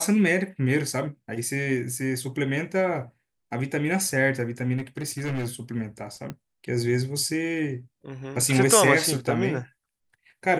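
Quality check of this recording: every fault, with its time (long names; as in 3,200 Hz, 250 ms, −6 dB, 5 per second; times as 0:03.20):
0:04.77–0:05.49: clipping −25 dBFS
0:06.30: click −20 dBFS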